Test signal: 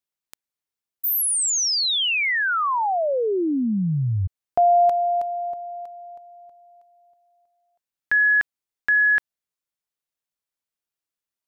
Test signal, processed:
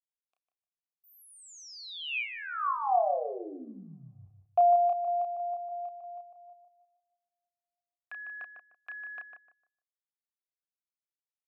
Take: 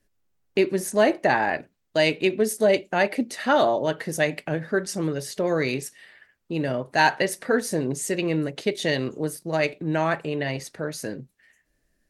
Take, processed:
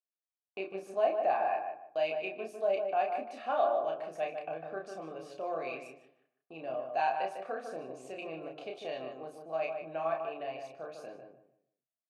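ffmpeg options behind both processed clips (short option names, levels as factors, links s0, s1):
-filter_complex "[0:a]agate=range=0.0794:threshold=0.00708:ratio=3:release=66:detection=peak,adynamicequalizer=threshold=0.02:dfrequency=1800:dqfactor=3.8:tfrequency=1800:tqfactor=3.8:attack=5:release=100:ratio=0.375:range=2.5:mode=boostabove:tftype=bell,asplit=2[s0][s1];[s1]acompressor=threshold=0.0282:ratio=6:attack=1.2:release=77:knee=1:detection=rms,volume=1.41[s2];[s0][s2]amix=inputs=2:normalize=0,asplit=3[s3][s4][s5];[s3]bandpass=f=730:t=q:w=8,volume=1[s6];[s4]bandpass=f=1090:t=q:w=8,volume=0.501[s7];[s5]bandpass=f=2440:t=q:w=8,volume=0.355[s8];[s6][s7][s8]amix=inputs=3:normalize=0,asplit=2[s9][s10];[s10]adelay=31,volume=0.631[s11];[s9][s11]amix=inputs=2:normalize=0,asplit=2[s12][s13];[s13]adelay=151,lowpass=f=1600:p=1,volume=0.562,asplit=2[s14][s15];[s15]adelay=151,lowpass=f=1600:p=1,volume=0.28,asplit=2[s16][s17];[s17]adelay=151,lowpass=f=1600:p=1,volume=0.28,asplit=2[s18][s19];[s19]adelay=151,lowpass=f=1600:p=1,volume=0.28[s20];[s14][s16][s18][s20]amix=inputs=4:normalize=0[s21];[s12][s21]amix=inputs=2:normalize=0,volume=0.562"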